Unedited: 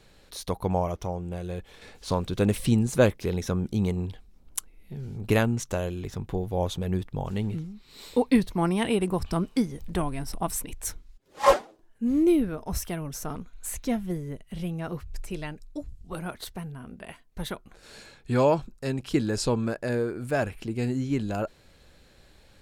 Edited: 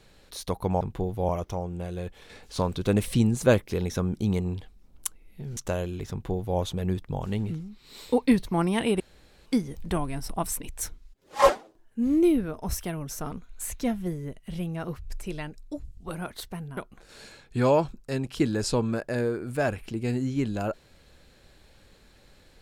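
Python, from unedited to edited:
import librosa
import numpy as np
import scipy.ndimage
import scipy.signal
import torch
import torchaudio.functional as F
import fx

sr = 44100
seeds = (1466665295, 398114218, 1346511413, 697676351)

y = fx.edit(x, sr, fx.cut(start_s=5.09, length_s=0.52),
    fx.duplicate(start_s=6.15, length_s=0.48, to_s=0.81),
    fx.room_tone_fill(start_s=9.04, length_s=0.46),
    fx.cut(start_s=16.81, length_s=0.7), tone=tone)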